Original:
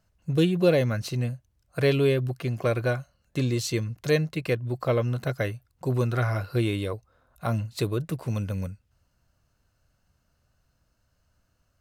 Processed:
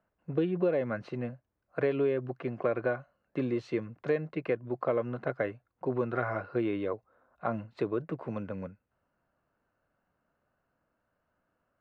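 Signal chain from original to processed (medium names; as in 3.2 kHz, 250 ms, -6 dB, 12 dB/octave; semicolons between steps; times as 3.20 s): low-pass 4.2 kHz 12 dB/octave; three-band isolator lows -19 dB, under 200 Hz, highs -21 dB, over 2.1 kHz; compression 6:1, threshold -24 dBFS, peak gain reduction 8.5 dB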